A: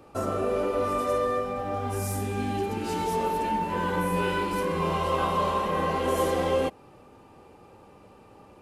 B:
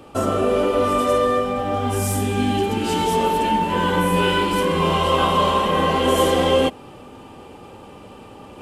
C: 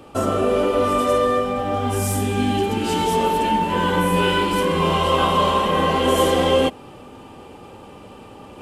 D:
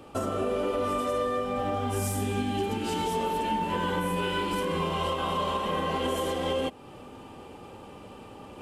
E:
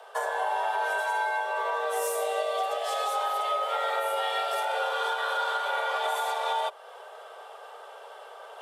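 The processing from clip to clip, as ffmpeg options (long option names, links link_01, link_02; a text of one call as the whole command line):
ffmpeg -i in.wav -af "equalizer=frequency=250:width_type=o:width=0.33:gain=4,equalizer=frequency=3150:width_type=o:width=0.33:gain=9,equalizer=frequency=8000:width_type=o:width=0.33:gain=4,areverse,acompressor=mode=upward:threshold=-42dB:ratio=2.5,areverse,volume=7.5dB" out.wav
ffmpeg -i in.wav -af anull out.wav
ffmpeg -i in.wav -af "alimiter=limit=-15dB:level=0:latency=1:release=315,volume=-4.5dB" out.wav
ffmpeg -i in.wav -af "afreqshift=370" out.wav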